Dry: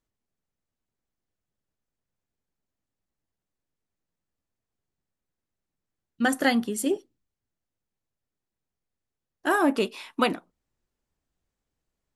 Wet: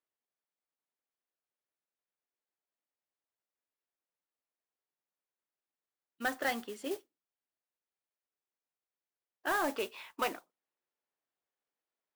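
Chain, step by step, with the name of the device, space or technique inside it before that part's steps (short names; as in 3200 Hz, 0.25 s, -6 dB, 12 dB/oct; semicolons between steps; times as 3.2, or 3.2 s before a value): carbon microphone (BPF 490–3300 Hz; soft clip -18.5 dBFS, distortion -14 dB; modulation noise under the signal 14 dB); gain -5 dB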